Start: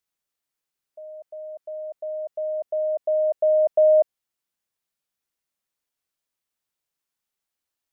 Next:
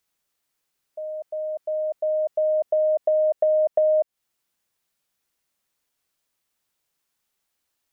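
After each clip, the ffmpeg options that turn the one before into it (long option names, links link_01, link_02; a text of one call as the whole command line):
ffmpeg -i in.wav -af "acompressor=threshold=-26dB:ratio=6,volume=7.5dB" out.wav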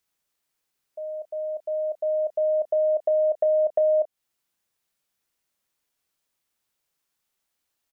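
ffmpeg -i in.wav -filter_complex "[0:a]asplit=2[link_01][link_02];[link_02]adelay=31,volume=-13dB[link_03];[link_01][link_03]amix=inputs=2:normalize=0,volume=-2dB" out.wav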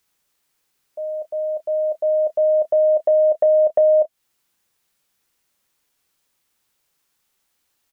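ffmpeg -i in.wav -af "bandreject=frequency=650:width=12,volume=8.5dB" out.wav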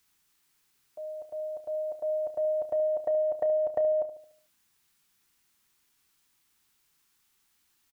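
ffmpeg -i in.wav -filter_complex "[0:a]equalizer=frequency=570:width_type=o:width=0.58:gain=-13.5,asplit=2[link_01][link_02];[link_02]adelay=73,lowpass=frequency=830:poles=1,volume=-9.5dB,asplit=2[link_03][link_04];[link_04]adelay=73,lowpass=frequency=830:poles=1,volume=0.54,asplit=2[link_05][link_06];[link_06]adelay=73,lowpass=frequency=830:poles=1,volume=0.54,asplit=2[link_07][link_08];[link_08]adelay=73,lowpass=frequency=830:poles=1,volume=0.54,asplit=2[link_09][link_10];[link_10]adelay=73,lowpass=frequency=830:poles=1,volume=0.54,asplit=2[link_11][link_12];[link_12]adelay=73,lowpass=frequency=830:poles=1,volume=0.54[link_13];[link_03][link_05][link_07][link_09][link_11][link_13]amix=inputs=6:normalize=0[link_14];[link_01][link_14]amix=inputs=2:normalize=0" out.wav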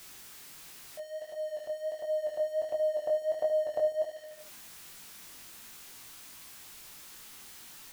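ffmpeg -i in.wav -af "aeval=exprs='val(0)+0.5*0.00944*sgn(val(0))':channel_layout=same,flanger=delay=18:depth=5.4:speed=1.4,bandreject=frequency=50:width_type=h:width=6,bandreject=frequency=100:width_type=h:width=6" out.wav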